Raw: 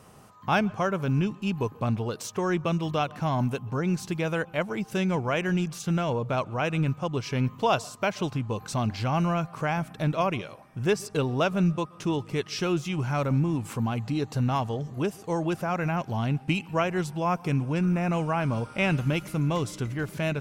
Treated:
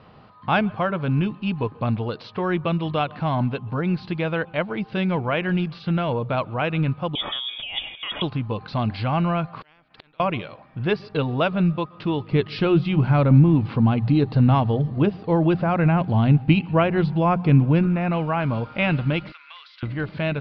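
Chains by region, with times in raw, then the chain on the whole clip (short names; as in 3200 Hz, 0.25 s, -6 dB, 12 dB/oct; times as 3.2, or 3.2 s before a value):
7.15–8.22 negative-ratio compressor -32 dBFS + inverted band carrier 3500 Hz
9.61–10.2 flipped gate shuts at -29 dBFS, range -39 dB + spectral compressor 4:1
12.32–17.87 low shelf 470 Hz +8.5 dB + notches 60/120/180 Hz
19.32–19.83 HPF 1400 Hz 24 dB/oct + compressor 4:1, threshold -42 dBFS
whole clip: steep low-pass 4600 Hz 72 dB/oct; notch 390 Hz, Q 12; gain +3.5 dB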